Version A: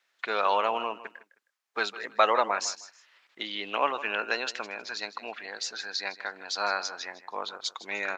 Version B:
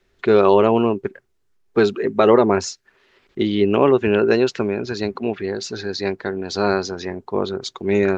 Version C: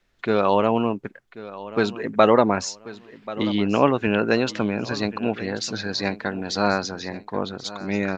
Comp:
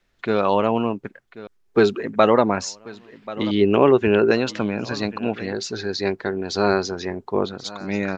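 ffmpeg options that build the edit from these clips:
-filter_complex "[1:a]asplit=3[a][b][c];[2:a]asplit=4[d][e][f][g];[d]atrim=end=1.472[h];[a]atrim=start=1.468:end=2.002[i];[e]atrim=start=1.998:end=3.512[j];[b]atrim=start=3.508:end=4.312[k];[f]atrim=start=4.308:end=5.532[l];[c]atrim=start=5.528:end=7.462[m];[g]atrim=start=7.458[n];[h][i]acrossfade=d=0.004:c1=hsin:c2=hsin[o];[o][j]acrossfade=d=0.004:c1=hsin:c2=hsin[p];[p][k]acrossfade=d=0.004:c1=hsin:c2=hsin[q];[q][l]acrossfade=d=0.004:c1=hsin:c2=hsin[r];[r][m]acrossfade=d=0.004:c1=hsin:c2=hsin[s];[s][n]acrossfade=d=0.004:c1=hsin:c2=hsin"

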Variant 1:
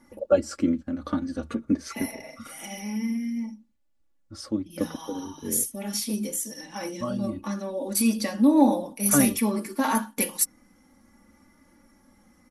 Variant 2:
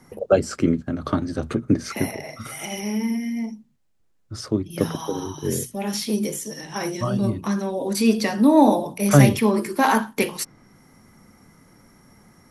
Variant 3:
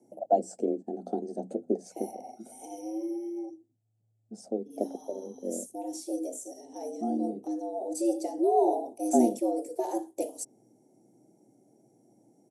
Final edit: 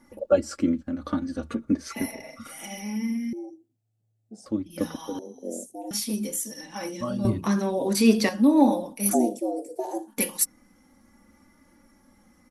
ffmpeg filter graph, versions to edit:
-filter_complex "[2:a]asplit=3[a][b][c];[0:a]asplit=5[d][e][f][g][h];[d]atrim=end=3.332[i];[a]atrim=start=3.328:end=4.462[j];[e]atrim=start=4.458:end=5.192[k];[b]atrim=start=5.188:end=5.912[l];[f]atrim=start=5.908:end=7.252[m];[1:a]atrim=start=7.248:end=8.292[n];[g]atrim=start=8.288:end=9.15[o];[c]atrim=start=9.09:end=10.13[p];[h]atrim=start=10.07[q];[i][j]acrossfade=d=0.004:c1=hsin:c2=hsin[r];[r][k]acrossfade=d=0.004:c1=hsin:c2=hsin[s];[s][l]acrossfade=d=0.004:c1=hsin:c2=hsin[t];[t][m]acrossfade=d=0.004:c1=hsin:c2=hsin[u];[u][n]acrossfade=d=0.004:c1=hsin:c2=hsin[v];[v][o]acrossfade=d=0.004:c1=hsin:c2=hsin[w];[w][p]acrossfade=d=0.06:c1=tri:c2=tri[x];[x][q]acrossfade=d=0.06:c1=tri:c2=tri"

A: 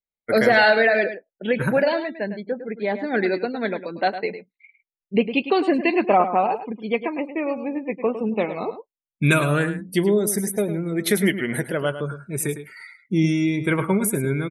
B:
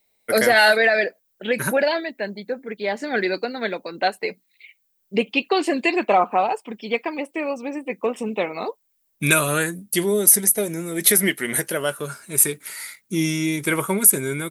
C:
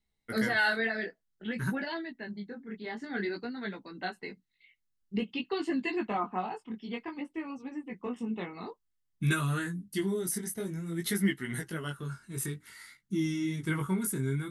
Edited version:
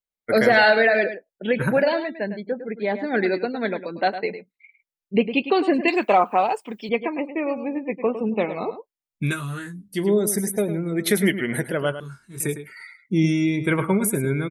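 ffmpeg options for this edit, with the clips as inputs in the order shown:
-filter_complex "[2:a]asplit=2[a][b];[0:a]asplit=4[c][d][e][f];[c]atrim=end=5.882[g];[1:a]atrim=start=5.878:end=6.892[h];[d]atrim=start=6.888:end=9.37[i];[a]atrim=start=9.13:end=10.12[j];[e]atrim=start=9.88:end=12.002[k];[b]atrim=start=11.998:end=12.402[l];[f]atrim=start=12.398[m];[g][h]acrossfade=d=0.004:c1=hsin:c2=hsin[n];[n][i]acrossfade=d=0.004:c1=hsin:c2=hsin[o];[o][j]acrossfade=d=0.24:c1=tri:c2=tri[p];[p][k]acrossfade=d=0.24:c1=tri:c2=tri[q];[q][l]acrossfade=d=0.004:c1=hsin:c2=hsin[r];[r][m]acrossfade=d=0.004:c1=hsin:c2=hsin"

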